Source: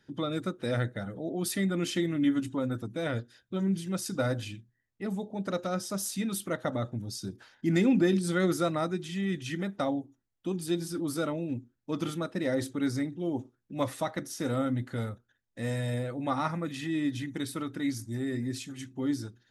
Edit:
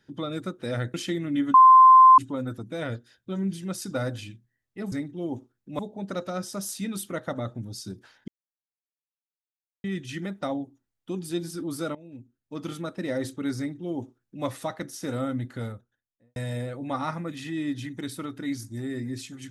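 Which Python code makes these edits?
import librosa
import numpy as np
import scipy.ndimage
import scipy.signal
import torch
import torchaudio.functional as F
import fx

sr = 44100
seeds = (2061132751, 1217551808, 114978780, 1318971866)

y = fx.studio_fade_out(x, sr, start_s=14.92, length_s=0.81)
y = fx.edit(y, sr, fx.cut(start_s=0.94, length_s=0.88),
    fx.insert_tone(at_s=2.42, length_s=0.64, hz=1040.0, db=-9.0),
    fx.silence(start_s=7.65, length_s=1.56),
    fx.fade_in_from(start_s=11.32, length_s=0.95, floor_db=-17.5),
    fx.duplicate(start_s=12.95, length_s=0.87, to_s=5.16), tone=tone)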